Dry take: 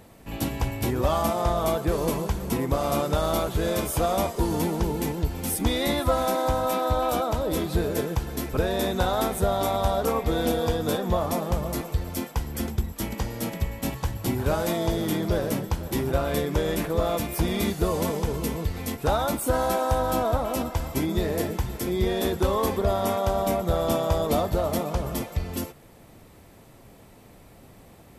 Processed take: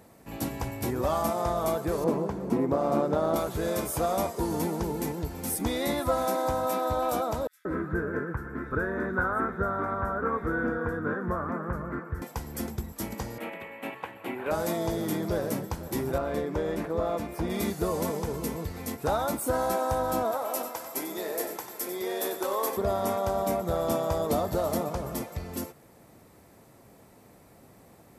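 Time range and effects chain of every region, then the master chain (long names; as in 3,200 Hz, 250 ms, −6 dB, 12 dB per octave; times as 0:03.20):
0:02.04–0:03.36: high-pass filter 250 Hz + spectral tilt −4 dB per octave + highs frequency-modulated by the lows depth 0.14 ms
0:07.47–0:12.22: drawn EQ curve 380 Hz 0 dB, 750 Hz −10 dB, 1,500 Hz +12 dB, 2,600 Hz −13 dB, 4,100 Hz −24 dB + multiband delay without the direct sound highs, lows 180 ms, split 3,600 Hz
0:13.38–0:14.51: high-pass filter 340 Hz + high shelf with overshoot 3,800 Hz −13.5 dB, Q 3
0:16.18–0:17.50: low-pass filter 2,200 Hz 6 dB per octave + parametric band 140 Hz −5.5 dB 0.38 octaves
0:20.31–0:22.77: high-pass filter 450 Hz + high-shelf EQ 11,000 Hz +10.5 dB + single-tap delay 94 ms −10 dB
0:24.30–0:24.89: parametric band 2,300 Hz −3 dB 0.23 octaves + multiband upward and downward compressor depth 70%
whole clip: high-pass filter 130 Hz 6 dB per octave; parametric band 3,100 Hz −6.5 dB 0.78 octaves; level −2.5 dB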